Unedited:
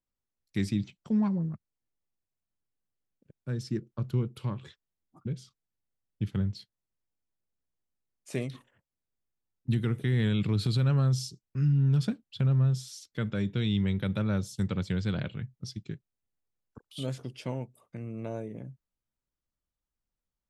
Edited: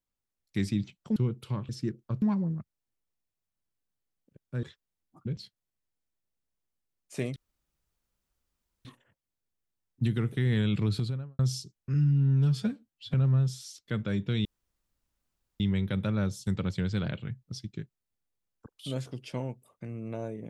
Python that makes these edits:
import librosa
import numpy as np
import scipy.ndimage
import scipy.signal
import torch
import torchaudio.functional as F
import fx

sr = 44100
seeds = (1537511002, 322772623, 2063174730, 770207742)

y = fx.studio_fade_out(x, sr, start_s=10.51, length_s=0.55)
y = fx.edit(y, sr, fx.swap(start_s=1.16, length_s=2.41, other_s=4.1, other_length_s=0.53),
    fx.cut(start_s=5.36, length_s=1.16),
    fx.insert_room_tone(at_s=8.52, length_s=1.49),
    fx.stretch_span(start_s=11.61, length_s=0.8, factor=1.5),
    fx.insert_room_tone(at_s=13.72, length_s=1.15), tone=tone)